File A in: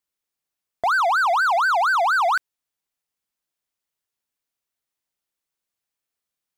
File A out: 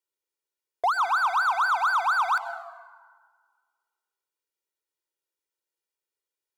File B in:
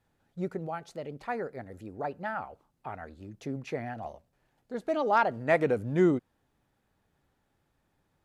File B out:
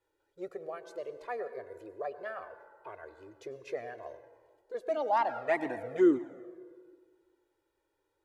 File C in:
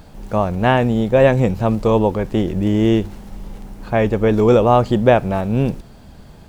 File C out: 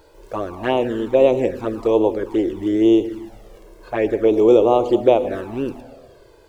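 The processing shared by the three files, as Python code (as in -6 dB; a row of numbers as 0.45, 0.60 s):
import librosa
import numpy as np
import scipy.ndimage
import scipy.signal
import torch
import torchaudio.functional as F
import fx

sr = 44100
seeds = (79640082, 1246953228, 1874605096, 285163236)

y = fx.low_shelf_res(x, sr, hz=240.0, db=-10.0, q=3.0)
y = fx.rev_plate(y, sr, seeds[0], rt60_s=1.7, hf_ratio=0.55, predelay_ms=85, drr_db=11.5)
y = fx.env_flanger(y, sr, rest_ms=2.1, full_db=-8.5)
y = y * 10.0 ** (-2.5 / 20.0)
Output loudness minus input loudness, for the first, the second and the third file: -4.5, -2.5, -1.5 LU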